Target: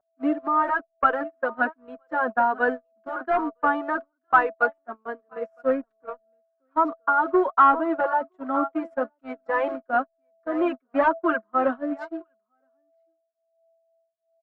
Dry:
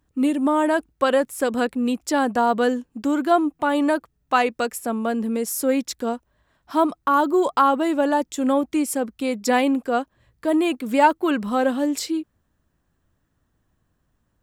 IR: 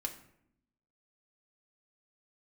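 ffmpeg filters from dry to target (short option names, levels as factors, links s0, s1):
-filter_complex "[0:a]highpass=f=270:w=0.5412,highpass=f=270:w=1.3066,asplit=2[s0][s1];[s1]aecho=0:1:967:0.2[s2];[s0][s2]amix=inputs=2:normalize=0,acrusher=bits=5:mode=log:mix=0:aa=0.000001,asettb=1/sr,asplit=3[s3][s4][s5];[s3]atrim=end=5.694[s6];[s4]atrim=start=5.69:end=6.14,asetpts=PTS-STARTPTS,afade=t=in:d=0.004:c=qsin,afade=t=out:st=0.446:d=0.004:c=qsin,adynamicsmooth=sensitivity=3:basefreq=500[s7];[s5]atrim=start=6.136[s8];[s6][s7]acrossfade=d=0.004:c1=hsin:c2=qsin[s9];[s9][s8]acrossfade=d=0.004:c1=qsin:c2=hsin,aeval=exprs='val(0)+0.0355*sin(2*PI*660*n/s)':c=same,agate=range=0.02:threshold=0.0794:ratio=16:detection=peak,tremolo=f=3:d=0.45,asoftclip=type=hard:threshold=0.211,lowpass=f=1400:t=q:w=3.3,asplit=2[s10][s11];[s11]adelay=4.9,afreqshift=1.2[s12];[s10][s12]amix=inputs=2:normalize=1"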